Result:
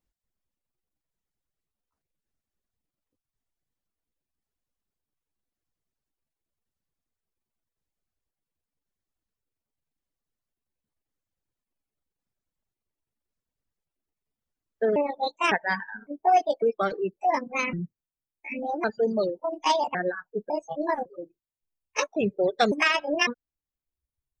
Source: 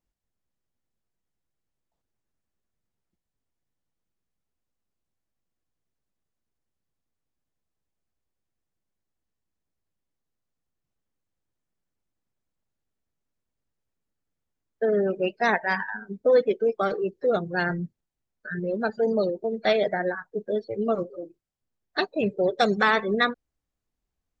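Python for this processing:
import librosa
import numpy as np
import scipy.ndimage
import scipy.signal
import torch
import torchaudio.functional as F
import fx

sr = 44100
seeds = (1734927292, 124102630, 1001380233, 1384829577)

y = fx.pitch_trill(x, sr, semitones=6.5, every_ms=554)
y = fx.dereverb_blind(y, sr, rt60_s=1.4)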